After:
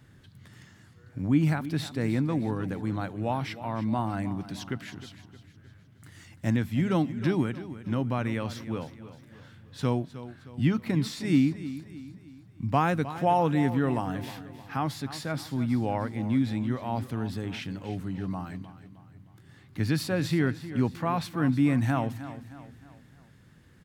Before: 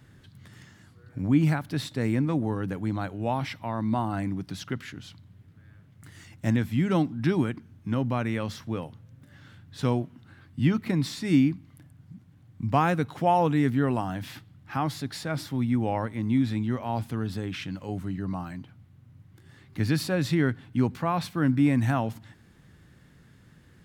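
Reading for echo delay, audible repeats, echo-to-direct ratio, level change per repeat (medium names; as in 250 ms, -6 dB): 310 ms, 4, -13.0 dB, -7.0 dB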